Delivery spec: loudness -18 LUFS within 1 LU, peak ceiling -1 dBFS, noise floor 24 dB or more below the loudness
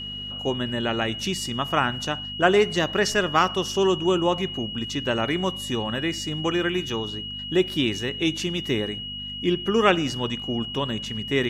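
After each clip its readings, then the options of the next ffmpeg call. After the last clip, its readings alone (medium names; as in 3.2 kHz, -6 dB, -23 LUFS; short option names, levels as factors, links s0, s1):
hum 50 Hz; highest harmonic 250 Hz; hum level -39 dBFS; steady tone 2.9 kHz; tone level -32 dBFS; loudness -24.5 LUFS; peak level -3.5 dBFS; loudness target -18.0 LUFS
-> -af "bandreject=f=50:t=h:w=4,bandreject=f=100:t=h:w=4,bandreject=f=150:t=h:w=4,bandreject=f=200:t=h:w=4,bandreject=f=250:t=h:w=4"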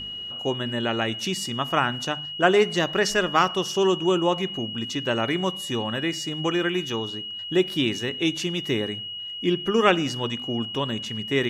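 hum not found; steady tone 2.9 kHz; tone level -32 dBFS
-> -af "bandreject=f=2900:w=30"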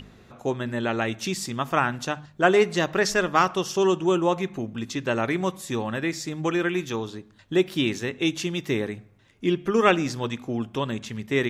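steady tone not found; loudness -25.0 LUFS; peak level -3.5 dBFS; loudness target -18.0 LUFS
-> -af "volume=2.24,alimiter=limit=0.891:level=0:latency=1"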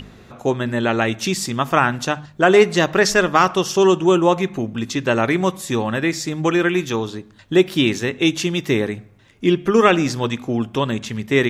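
loudness -18.5 LUFS; peak level -1.0 dBFS; noise floor -47 dBFS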